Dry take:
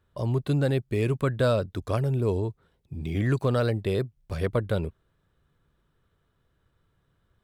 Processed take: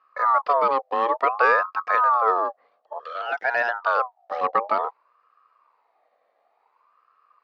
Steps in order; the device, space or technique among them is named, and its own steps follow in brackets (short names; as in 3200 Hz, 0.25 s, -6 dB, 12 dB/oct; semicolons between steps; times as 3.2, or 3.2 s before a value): 2.98–3.82 HPF 400 Hz -> 190 Hz 24 dB/oct; voice changer toy (ring modulator with a swept carrier 920 Hz, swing 30%, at 0.56 Hz; speaker cabinet 440–4800 Hz, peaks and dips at 470 Hz +8 dB, 680 Hz +4 dB, 1200 Hz +10 dB, 1800 Hz +5 dB, 3200 Hz -3 dB); gain +2 dB